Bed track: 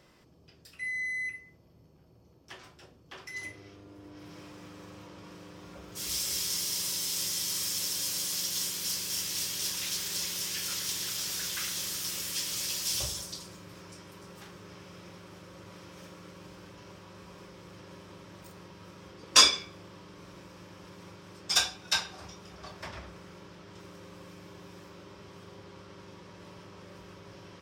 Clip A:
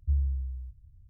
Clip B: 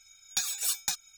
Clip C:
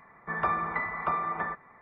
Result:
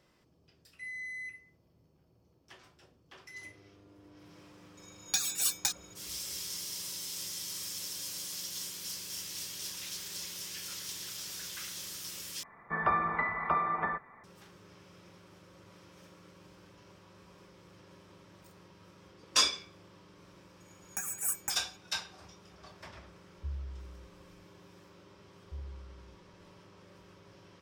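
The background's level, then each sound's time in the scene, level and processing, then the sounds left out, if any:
bed track -7.5 dB
4.77 add B -0.5 dB
12.43 replace with C -0.5 dB
20.6 add B -1 dB + Chebyshev band-stop 1800–8300 Hz
23.36 add A -12 dB
25.44 add A -16.5 dB

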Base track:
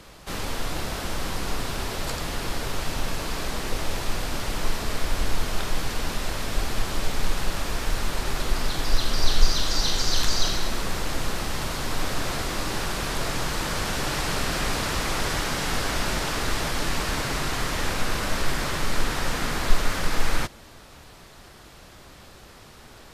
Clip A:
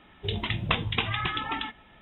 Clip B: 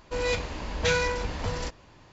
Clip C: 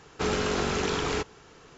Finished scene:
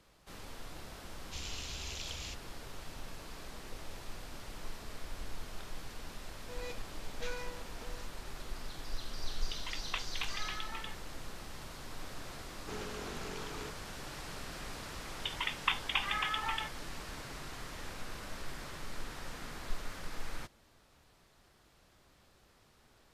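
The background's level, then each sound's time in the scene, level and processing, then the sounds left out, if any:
base track -18 dB
1.12 add C -7.5 dB + inverse Chebyshev band-stop 230–980 Hz, stop band 60 dB
6.37 add B -13 dB + ladder high-pass 190 Hz, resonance 20%
9.23 add A -11 dB + HPF 920 Hz
12.48 add C -16.5 dB
14.97 add A -4 dB + brick-wall FIR band-pass 750–3700 Hz

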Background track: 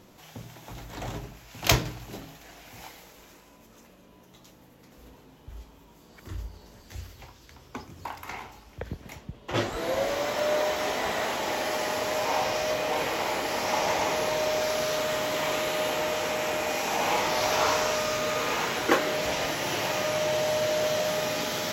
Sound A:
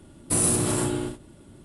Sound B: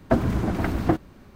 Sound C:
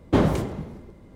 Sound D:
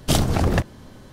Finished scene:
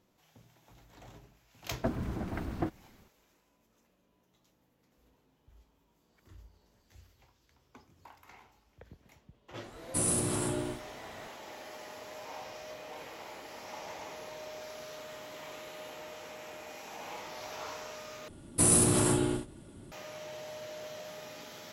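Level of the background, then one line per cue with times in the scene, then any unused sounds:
background track -17.5 dB
1.73 add B -12 dB
9.64 add A -7.5 dB
18.28 replace with A -1.5 dB
not used: C, D

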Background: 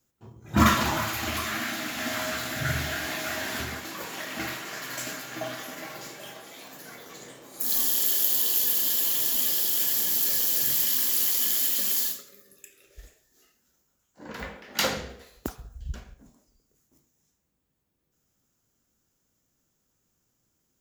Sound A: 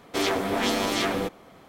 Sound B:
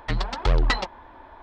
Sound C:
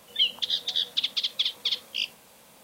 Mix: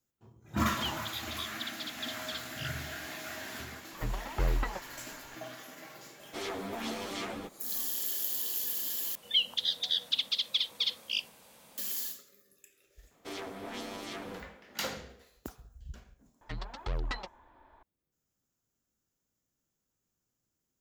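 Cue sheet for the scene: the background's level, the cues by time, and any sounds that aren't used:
background -10 dB
0.63 add C -14.5 dB
3.93 add B -9 dB + Bessel low-pass 1400 Hz
6.19 add A -9.5 dB + ensemble effect
9.15 replace with C -3.5 dB
13.11 add A -16 dB
16.41 add B -14 dB

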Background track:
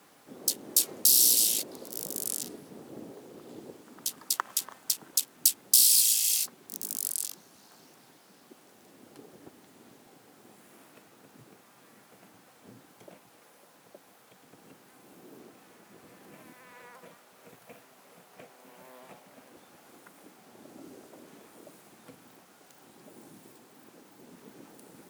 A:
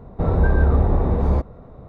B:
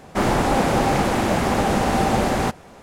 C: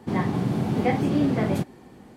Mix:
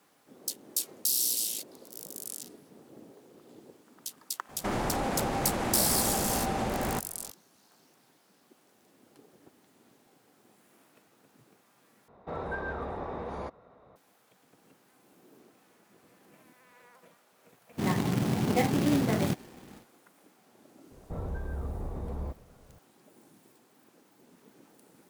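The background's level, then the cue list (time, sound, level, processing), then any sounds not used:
background track -7 dB
4.49 add B -6.5 dB + compressor 5:1, threshold -20 dBFS
12.08 replace with A -4 dB + HPF 1100 Hz 6 dB/oct
17.71 add C -4 dB, fades 0.10 s + companded quantiser 4-bit
20.91 add A -15 dB + limiter -13 dBFS

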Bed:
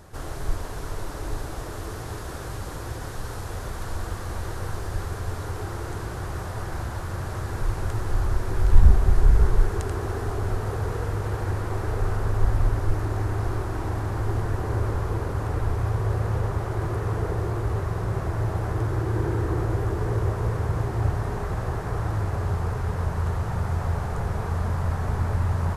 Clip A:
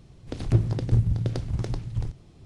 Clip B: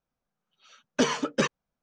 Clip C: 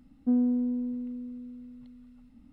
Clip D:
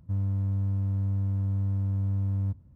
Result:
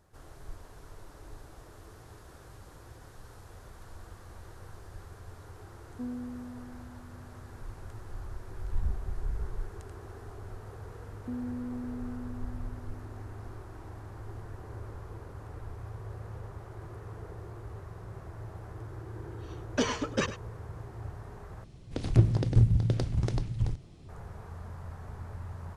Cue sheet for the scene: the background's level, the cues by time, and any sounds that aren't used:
bed -17 dB
5.72 add C -10.5 dB + bell 140 Hz -13.5 dB
11.01 add C -3 dB + compressor 4:1, threshold -33 dBFS
18.79 add B -4.5 dB + echo 0.101 s -13.5 dB
21.64 replace with A -0.5 dB
not used: D

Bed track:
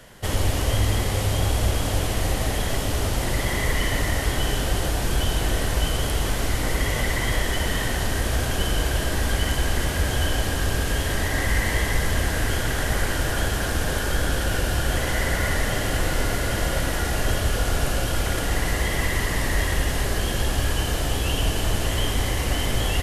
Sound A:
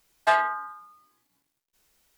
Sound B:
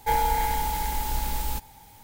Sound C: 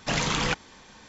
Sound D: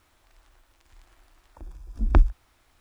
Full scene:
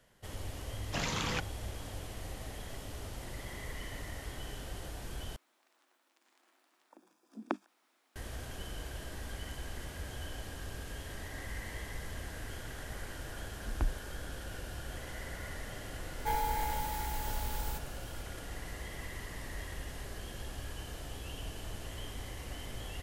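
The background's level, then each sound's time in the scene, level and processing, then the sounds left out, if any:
bed track -19.5 dB
0.86 add C -9 dB
5.36 replace with D -8 dB + steep high-pass 200 Hz 48 dB/oct
11.66 add D -15.5 dB
16.19 add B -9.5 dB
not used: A

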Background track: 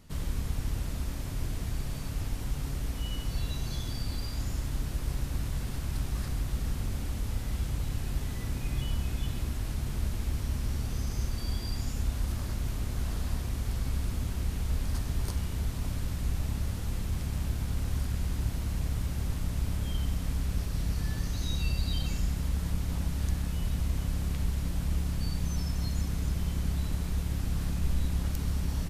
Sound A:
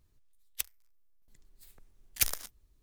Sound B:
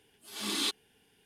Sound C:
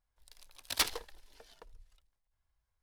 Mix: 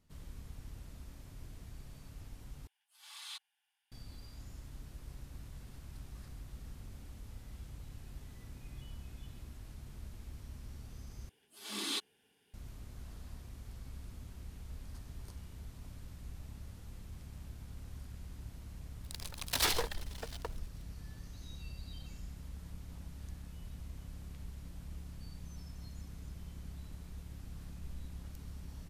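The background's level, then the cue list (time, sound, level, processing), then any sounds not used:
background track -16.5 dB
2.67 replace with B -14.5 dB + elliptic high-pass 800 Hz, stop band 80 dB
11.29 replace with B -5.5 dB + HPF 110 Hz 6 dB/oct
18.83 add C -5 dB + sample leveller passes 5
not used: A

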